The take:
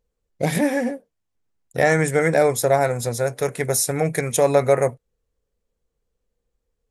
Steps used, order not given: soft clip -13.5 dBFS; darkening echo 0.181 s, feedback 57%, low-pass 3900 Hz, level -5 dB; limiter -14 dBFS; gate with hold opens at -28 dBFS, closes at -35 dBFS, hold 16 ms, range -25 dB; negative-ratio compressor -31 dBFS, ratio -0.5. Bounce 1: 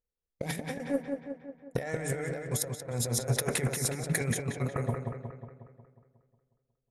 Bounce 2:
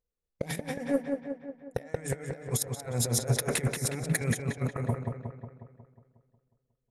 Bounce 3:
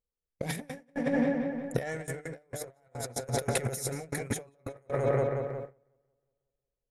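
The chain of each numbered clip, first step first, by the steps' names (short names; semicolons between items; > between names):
limiter > negative-ratio compressor > gate with hold > darkening echo > soft clip; gate with hold > negative-ratio compressor > darkening echo > limiter > soft clip; limiter > soft clip > darkening echo > negative-ratio compressor > gate with hold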